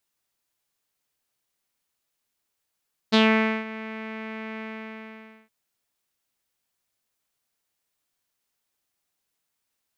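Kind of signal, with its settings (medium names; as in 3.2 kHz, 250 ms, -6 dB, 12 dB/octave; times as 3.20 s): synth note saw A3 12 dB/octave, low-pass 2.2 kHz, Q 3.7, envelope 1 oct, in 0.17 s, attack 21 ms, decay 0.50 s, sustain -19 dB, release 0.89 s, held 1.48 s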